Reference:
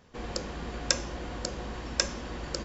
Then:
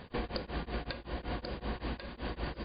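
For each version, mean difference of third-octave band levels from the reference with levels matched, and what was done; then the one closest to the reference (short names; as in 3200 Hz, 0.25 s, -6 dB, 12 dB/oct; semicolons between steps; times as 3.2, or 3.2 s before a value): 6.5 dB: notch 1300 Hz, Q 17; compressor 5:1, threshold -45 dBFS, peak gain reduction 23 dB; brick-wall FIR low-pass 4900 Hz; beating tremolo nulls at 5.3 Hz; gain +12.5 dB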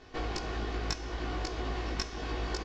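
4.5 dB: minimum comb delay 2.7 ms; LPF 5800 Hz 24 dB/oct; compressor 6:1, threshold -40 dBFS, peak gain reduction 17.5 dB; doubler 19 ms -2.5 dB; gain +6.5 dB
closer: second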